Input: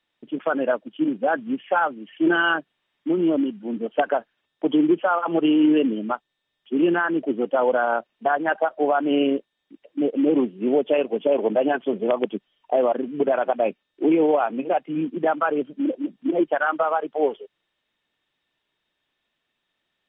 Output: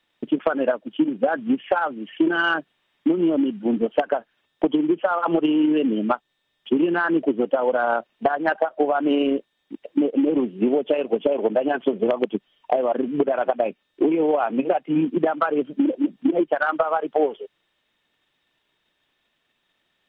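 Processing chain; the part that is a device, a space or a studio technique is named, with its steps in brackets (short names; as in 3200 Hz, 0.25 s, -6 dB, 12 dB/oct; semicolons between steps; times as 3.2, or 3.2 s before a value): drum-bus smash (transient shaper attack +8 dB, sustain 0 dB; compressor 10:1, threshold -21 dBFS, peak gain reduction 13.5 dB; soft clip -12 dBFS, distortion -24 dB); gain +5.5 dB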